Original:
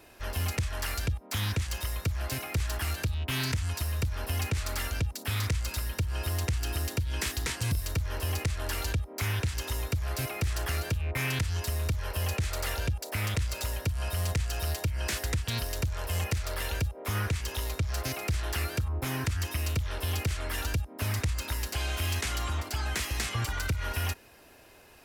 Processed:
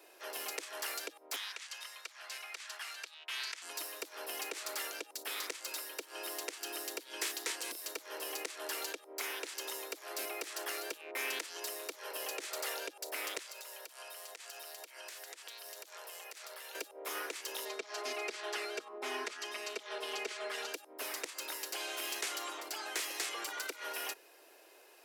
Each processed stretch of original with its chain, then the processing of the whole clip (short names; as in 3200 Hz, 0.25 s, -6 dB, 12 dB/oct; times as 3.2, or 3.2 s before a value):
1.36–3.62 HPF 1200 Hz + air absorption 55 m
13.38–16.75 HPF 550 Hz + compressor 12:1, threshold -40 dBFS
17.65–20.74 air absorption 71 m + comb 4.8 ms, depth 85%
whole clip: steep high-pass 330 Hz 48 dB/oct; bell 1500 Hz -3 dB 2.4 oct; gain -2.5 dB